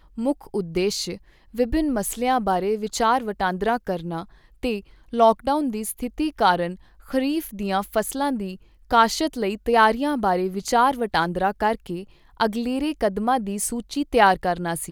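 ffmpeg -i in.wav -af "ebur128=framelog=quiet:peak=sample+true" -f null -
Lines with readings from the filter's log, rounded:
Integrated loudness:
  I:         -22.9 LUFS
  Threshold: -33.2 LUFS
Loudness range:
  LRA:         3.2 LU
  Threshold: -43.2 LUFS
  LRA low:   -24.5 LUFS
  LRA high:  -21.3 LUFS
Sample peak:
  Peak:       -3.5 dBFS
True peak:
  Peak:       -3.5 dBFS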